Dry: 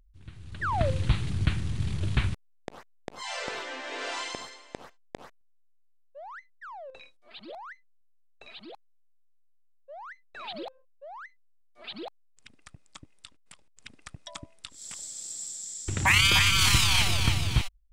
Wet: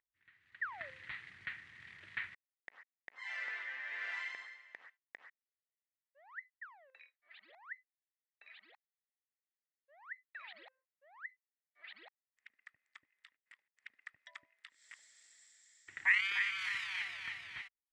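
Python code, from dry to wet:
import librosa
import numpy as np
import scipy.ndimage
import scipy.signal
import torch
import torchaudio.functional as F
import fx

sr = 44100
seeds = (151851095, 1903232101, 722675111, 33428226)

y = fx.rider(x, sr, range_db=4, speed_s=2.0)
y = fx.bandpass_q(y, sr, hz=1900.0, q=7.7)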